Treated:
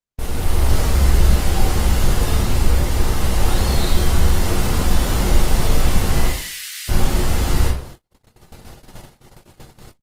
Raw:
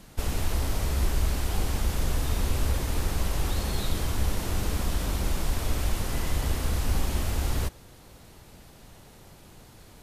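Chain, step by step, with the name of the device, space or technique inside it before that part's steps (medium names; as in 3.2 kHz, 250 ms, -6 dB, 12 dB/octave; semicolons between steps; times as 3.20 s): 6.28–6.89 s: steep high-pass 1.8 kHz 36 dB/octave; speakerphone in a meeting room (reverberation RT60 0.50 s, pre-delay 18 ms, DRR -3.5 dB; speakerphone echo 80 ms, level -23 dB; level rider gain up to 9 dB; gate -33 dBFS, range -52 dB; Opus 24 kbps 48 kHz)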